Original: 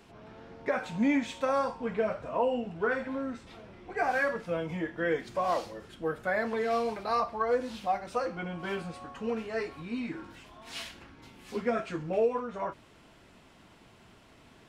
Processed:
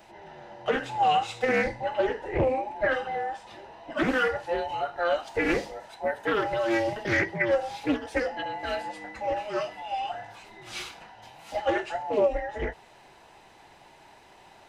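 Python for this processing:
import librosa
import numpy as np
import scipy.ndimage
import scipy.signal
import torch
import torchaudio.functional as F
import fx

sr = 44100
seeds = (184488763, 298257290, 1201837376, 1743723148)

y = fx.band_invert(x, sr, width_hz=1000)
y = fx.doppler_dist(y, sr, depth_ms=0.53)
y = F.gain(torch.from_numpy(y), 3.5).numpy()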